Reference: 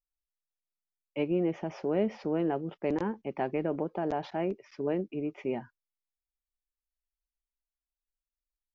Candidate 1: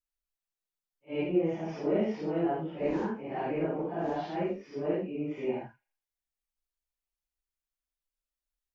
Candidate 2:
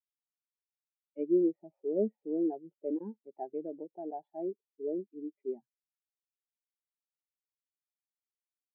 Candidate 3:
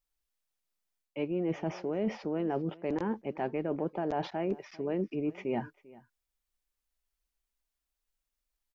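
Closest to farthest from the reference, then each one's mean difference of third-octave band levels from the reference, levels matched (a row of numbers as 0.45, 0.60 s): 3, 1, 2; 2.5, 4.5, 12.0 dB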